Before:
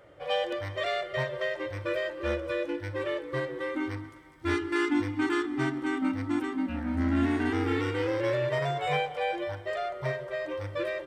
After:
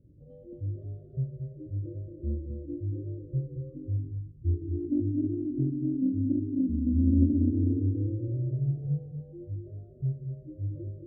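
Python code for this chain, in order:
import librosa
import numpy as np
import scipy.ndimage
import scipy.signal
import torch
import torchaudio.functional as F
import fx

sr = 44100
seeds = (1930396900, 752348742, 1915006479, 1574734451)

y = scipy.signal.sosfilt(scipy.signal.cheby2(4, 60, 850.0, 'lowpass', fs=sr, output='sos'), x)
y = fx.comb(y, sr, ms=1.7, depth=0.7, at=(3.21, 4.62))
y = y + 10.0 ** (-6.5 / 20.0) * np.pad(y, (int(227 * sr / 1000.0), 0))[:len(y)]
y = fx.doppler_dist(y, sr, depth_ms=0.11)
y = y * librosa.db_to_amplitude(6.5)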